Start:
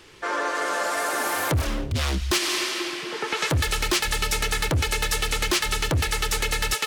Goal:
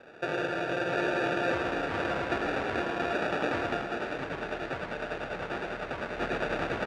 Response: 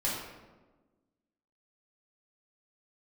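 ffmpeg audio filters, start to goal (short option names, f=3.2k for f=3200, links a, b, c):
-filter_complex "[0:a]aecho=1:1:462:0.266,acrusher=samples=42:mix=1:aa=0.000001,lowpass=2k,acompressor=threshold=-28dB:ratio=6,highpass=f=1.2k:p=1,aecho=1:1:107|680|790:0.562|0.631|0.668,asplit=3[a][b][c];[a]afade=t=out:st=3.81:d=0.02[d];[b]flanger=delay=7.5:depth=9.8:regen=71:speed=1.9:shape=sinusoidal,afade=t=in:st=3.81:d=0.02,afade=t=out:st=6.17:d=0.02[e];[c]afade=t=in:st=6.17:d=0.02[f];[d][e][f]amix=inputs=3:normalize=0,volume=8.5dB"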